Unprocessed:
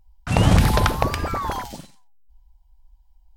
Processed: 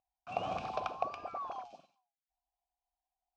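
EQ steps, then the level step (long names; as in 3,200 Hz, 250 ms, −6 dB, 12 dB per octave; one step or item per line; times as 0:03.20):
formant filter a
low-pass with resonance 6,000 Hz, resonance Q 2.1
parametric band 200 Hz +3 dB 2.7 octaves
−6.5 dB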